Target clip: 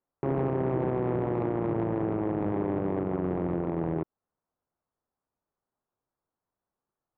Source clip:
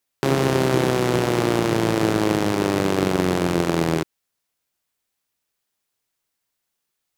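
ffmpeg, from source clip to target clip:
ffmpeg -i in.wav -af "lowpass=frequency=1200:width=0.5412,lowpass=frequency=1200:width=1.3066,alimiter=limit=-15dB:level=0:latency=1:release=169,asoftclip=type=tanh:threshold=-19.5dB" out.wav

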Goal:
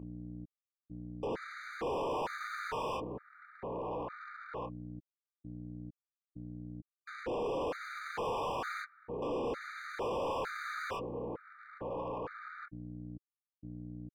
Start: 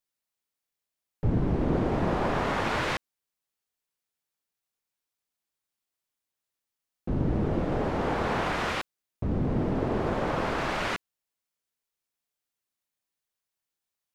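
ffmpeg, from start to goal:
ffmpeg -i in.wav -filter_complex "[0:a]alimiter=limit=-22.5dB:level=0:latency=1:release=140,highpass=390,equalizer=frequency=490:width_type=q:width=4:gain=8,equalizer=frequency=690:width_type=q:width=4:gain=-6,equalizer=frequency=1000:width_type=q:width=4:gain=3,equalizer=frequency=2000:width_type=q:width=4:gain=-8,lowpass=frequency=2400:width=0.5412,lowpass=frequency=2400:width=1.3066,aresample=16000,aeval=exprs='sgn(val(0))*max(abs(val(0))-0.00251,0)':channel_layout=same,aresample=44100,flanger=delay=4.3:depth=5.3:regen=-50:speed=0.36:shape=triangular,aeval=exprs='val(0)+0.00178*(sin(2*PI*60*n/s)+sin(2*PI*2*60*n/s)/2+sin(2*PI*3*60*n/s)/3+sin(2*PI*4*60*n/s)/4+sin(2*PI*5*60*n/s)/5)':channel_layout=same,asplit=2[link_01][link_02];[link_02]adelay=27,volume=-9.5dB[link_03];[link_01][link_03]amix=inputs=2:normalize=0,asplit=2[link_04][link_05];[link_05]adelay=1691,volume=-19dB,highshelf=frequency=4000:gain=-38[link_06];[link_04][link_06]amix=inputs=2:normalize=0,asplit=2[link_07][link_08];[link_08]highpass=frequency=720:poles=1,volume=38dB,asoftclip=type=tanh:threshold=-24.5dB[link_09];[link_07][link_09]amix=inputs=2:normalize=0,lowpass=frequency=1800:poles=1,volume=-6dB,afftfilt=real='re*gt(sin(2*PI*1.1*pts/sr)*(1-2*mod(floor(b*sr/1024/1200),2)),0)':imag='im*gt(sin(2*PI*1.1*pts/sr)*(1-2*mod(floor(b*sr/1024/1200),2)),0)':win_size=1024:overlap=0.75,volume=-3dB" out.wav

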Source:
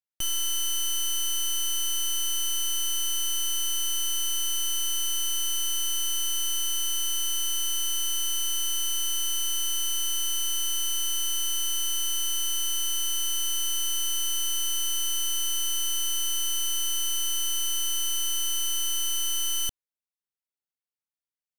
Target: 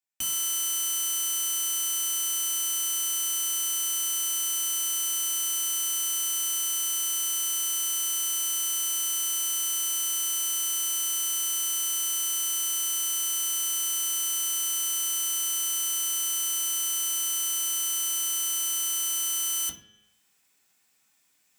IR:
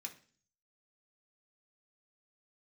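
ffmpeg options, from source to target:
-filter_complex "[0:a]highpass=41,bandreject=frequency=105.2:width_type=h:width=4,bandreject=frequency=210.4:width_type=h:width=4,bandreject=frequency=315.6:width_type=h:width=4,bandreject=frequency=420.8:width_type=h:width=4,bandreject=frequency=526:width_type=h:width=4,bandreject=frequency=631.2:width_type=h:width=4,bandreject=frequency=736.4:width_type=h:width=4,bandreject=frequency=841.6:width_type=h:width=4,bandreject=frequency=946.8:width_type=h:width=4,bandreject=frequency=1052:width_type=h:width=4,bandreject=frequency=1157.2:width_type=h:width=4,bandreject=frequency=1262.4:width_type=h:width=4,bandreject=frequency=1367.6:width_type=h:width=4,bandreject=frequency=1472.8:width_type=h:width=4,bandreject=frequency=1578:width_type=h:width=4,bandreject=frequency=1683.2:width_type=h:width=4,bandreject=frequency=1788.4:width_type=h:width=4,bandreject=frequency=1893.6:width_type=h:width=4,bandreject=frequency=1998.8:width_type=h:width=4,bandreject=frequency=2104:width_type=h:width=4,bandreject=frequency=2209.2:width_type=h:width=4,bandreject=frequency=2314.4:width_type=h:width=4,bandreject=frequency=2419.6:width_type=h:width=4,bandreject=frequency=2524.8:width_type=h:width=4,bandreject=frequency=2630:width_type=h:width=4,bandreject=frequency=2735.2:width_type=h:width=4,bandreject=frequency=2840.4:width_type=h:width=4,bandreject=frequency=2945.6:width_type=h:width=4,bandreject=frequency=3050.8:width_type=h:width=4,bandreject=frequency=3156:width_type=h:width=4,bandreject=frequency=3261.2:width_type=h:width=4,bandreject=frequency=3366.4:width_type=h:width=4,bandreject=frequency=3471.6:width_type=h:width=4,bandreject=frequency=3576.8:width_type=h:width=4,bandreject=frequency=3682:width_type=h:width=4,bandreject=frequency=3787.2:width_type=h:width=4,bandreject=frequency=3892.4:width_type=h:width=4,bandreject=frequency=3997.6:width_type=h:width=4,bandreject=frequency=4102.8:width_type=h:width=4,bandreject=frequency=4208:width_type=h:width=4,areverse,acompressor=mode=upward:threshold=-51dB:ratio=2.5,areverse[link_01];[1:a]atrim=start_sample=2205[link_02];[link_01][link_02]afir=irnorm=-1:irlink=0,volume=6.5dB"

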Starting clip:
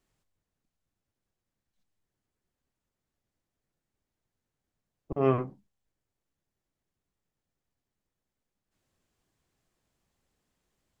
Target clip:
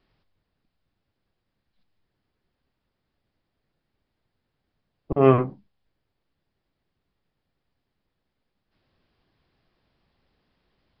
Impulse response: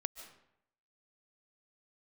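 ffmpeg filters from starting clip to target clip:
-af "aresample=11025,aresample=44100,volume=8.5dB"

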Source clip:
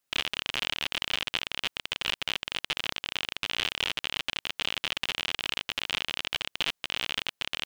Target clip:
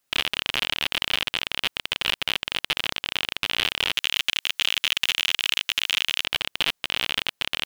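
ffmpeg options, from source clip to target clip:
ffmpeg -i in.wav -filter_complex "[0:a]asplit=3[link_01][link_02][link_03];[link_01]afade=type=out:start_time=3.93:duration=0.02[link_04];[link_02]tiltshelf=frequency=780:gain=-8.5,afade=type=in:start_time=3.93:duration=0.02,afade=type=out:start_time=6.23:duration=0.02[link_05];[link_03]afade=type=in:start_time=6.23:duration=0.02[link_06];[link_04][link_05][link_06]amix=inputs=3:normalize=0,alimiter=limit=-10.5dB:level=0:latency=1,asoftclip=type=hard:threshold=-14dB,volume=6dB" out.wav

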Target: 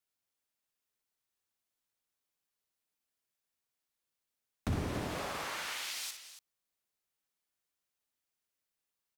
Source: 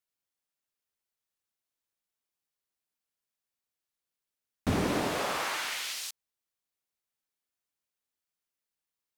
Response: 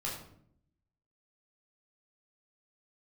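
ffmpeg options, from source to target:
-filter_complex "[0:a]acrossover=split=130[link_01][link_02];[link_02]acompressor=threshold=-37dB:ratio=6[link_03];[link_01][link_03]amix=inputs=2:normalize=0,asplit=2[link_04][link_05];[link_05]aecho=0:1:60|202|282:0.376|0.15|0.237[link_06];[link_04][link_06]amix=inputs=2:normalize=0"

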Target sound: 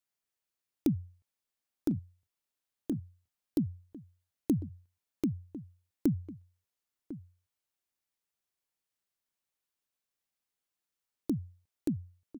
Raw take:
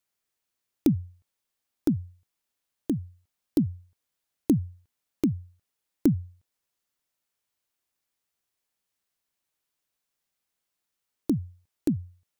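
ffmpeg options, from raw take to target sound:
ffmpeg -i in.wav -filter_complex "[0:a]asplit=2[link_01][link_02];[link_02]adelay=1050,volume=-15dB,highshelf=frequency=4000:gain=-23.6[link_03];[link_01][link_03]amix=inputs=2:normalize=0,volume=-6.5dB" out.wav

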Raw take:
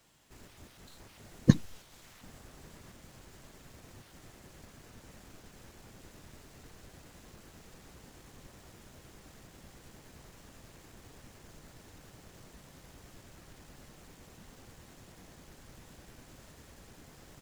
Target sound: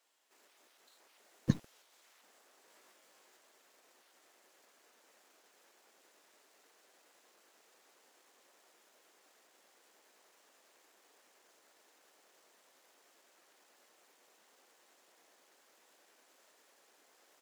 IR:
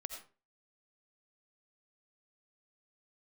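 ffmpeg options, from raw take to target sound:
-filter_complex "[0:a]asettb=1/sr,asplit=3[link_01][link_02][link_03];[link_01]atrim=end=2.664[link_04];[link_02]atrim=start=2.66:end=3.37,asetpts=PTS-STARTPTS,afade=type=in:duration=0.004:curve=qsin,afade=type=out:start_time=0.706:duration=0.004:curve=qsin,asplit=2[link_05][link_06];[link_06]adelay=19,volume=-4dB[link_07];[link_05][link_07]amix=inputs=2:normalize=0,atrim=end_sample=31311[link_08];[link_03]atrim=start=3.366[link_09];[link_04][link_08]acrossfade=duration=0.004:curve1=hsin:curve2=qsin[link_10];[link_10][link_09]acrossfade=duration=0.004:curve1=qsin:curve2=hsin,acrossover=split=370|1100|7600[link_11][link_12][link_13][link_14];[link_11]aeval=exprs='val(0)*gte(abs(val(0)),0.0141)':channel_layout=same[link_15];[link_15][link_12][link_13][link_14]amix=inputs=4:normalize=0,volume=-9dB"

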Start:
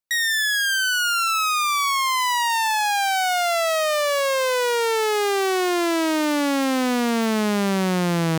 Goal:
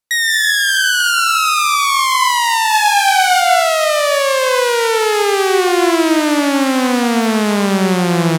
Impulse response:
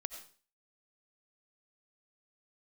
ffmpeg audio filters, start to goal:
-filter_complex "[0:a]acontrast=42,asplit=3[link_01][link_02][link_03];[link_01]afade=type=out:start_time=2.71:duration=0.02[link_04];[link_02]asplit=2[link_05][link_06];[link_06]adelay=37,volume=-2dB[link_07];[link_05][link_07]amix=inputs=2:normalize=0,afade=type=in:start_time=2.71:duration=0.02,afade=type=out:start_time=3.39:duration=0.02[link_08];[link_03]afade=type=in:start_time=3.39:duration=0.02[link_09];[link_04][link_08][link_09]amix=inputs=3:normalize=0[link_10];[1:a]atrim=start_sample=2205,asetrate=24696,aresample=44100[link_11];[link_10][link_11]afir=irnorm=-1:irlink=0"

